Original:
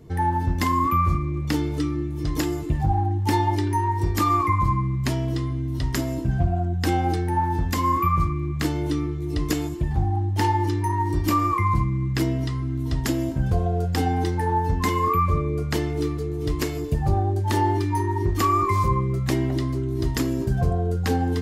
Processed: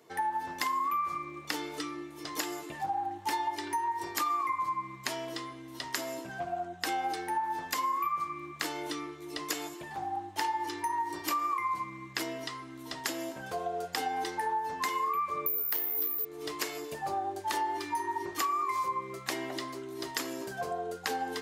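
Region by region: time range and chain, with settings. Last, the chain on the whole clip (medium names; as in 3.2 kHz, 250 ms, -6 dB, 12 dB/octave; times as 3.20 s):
15.46–16.25 s: high-pass 47 Hz + careless resampling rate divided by 3×, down filtered, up zero stuff
whole clip: high-pass 660 Hz 12 dB/octave; compression 5:1, threshold -29 dBFS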